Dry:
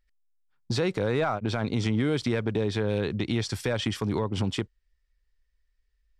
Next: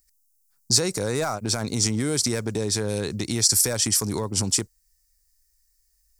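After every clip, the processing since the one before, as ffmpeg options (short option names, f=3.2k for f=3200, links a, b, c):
-af "aexciter=amount=10.2:drive=8.5:freq=5k"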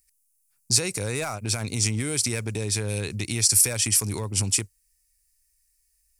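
-af "equalizer=f=100:t=o:w=0.67:g=8,equalizer=f=2.5k:t=o:w=0.67:g=12,equalizer=f=10k:t=o:w=0.67:g=10,volume=-5.5dB"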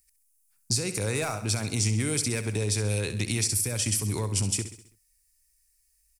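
-filter_complex "[0:a]acrossover=split=410[a][b];[b]acompressor=threshold=-25dB:ratio=6[c];[a][c]amix=inputs=2:normalize=0,asplit=2[d][e];[e]aecho=0:1:66|132|198|264|330:0.266|0.136|0.0692|0.0353|0.018[f];[d][f]amix=inputs=2:normalize=0"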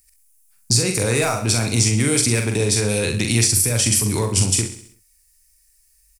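-filter_complex "[0:a]asplit=2[a][b];[b]adelay=43,volume=-5dB[c];[a][c]amix=inputs=2:normalize=0,volume=8.5dB"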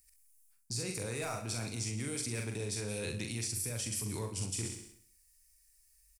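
-af "areverse,acompressor=threshold=-27dB:ratio=5,areverse,aecho=1:1:169:0.15,volume=-8.5dB"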